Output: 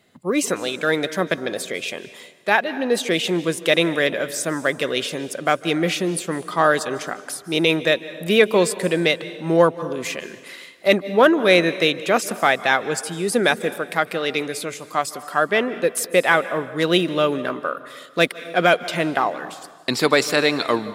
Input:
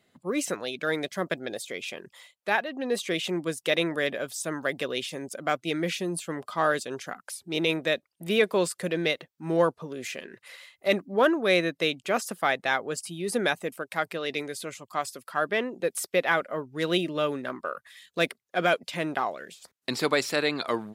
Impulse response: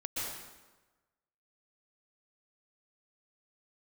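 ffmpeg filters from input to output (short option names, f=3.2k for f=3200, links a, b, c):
-filter_complex "[0:a]asplit=2[a][b];[1:a]atrim=start_sample=2205,asetrate=36162,aresample=44100[c];[b][c]afir=irnorm=-1:irlink=0,volume=-18dB[d];[a][d]amix=inputs=2:normalize=0,volume=7dB"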